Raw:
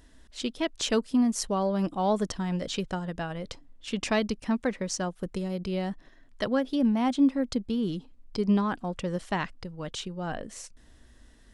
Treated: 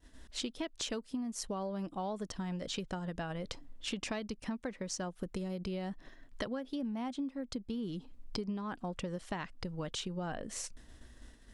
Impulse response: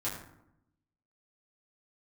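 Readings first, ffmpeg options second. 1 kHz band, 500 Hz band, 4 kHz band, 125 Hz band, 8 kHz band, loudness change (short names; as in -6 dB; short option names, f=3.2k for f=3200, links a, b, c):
-10.5 dB, -10.5 dB, -6.0 dB, -8.0 dB, -5.5 dB, -10.5 dB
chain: -af "agate=range=-33dB:threshold=-50dB:ratio=3:detection=peak,acompressor=threshold=-38dB:ratio=12,volume=3dB"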